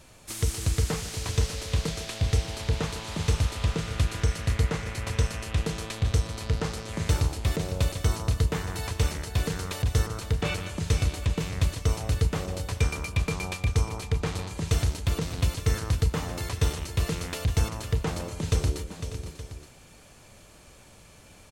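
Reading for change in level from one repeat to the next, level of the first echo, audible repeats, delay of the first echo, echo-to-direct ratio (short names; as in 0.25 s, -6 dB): no steady repeat, -12.5 dB, 4, 0.153 s, -6.5 dB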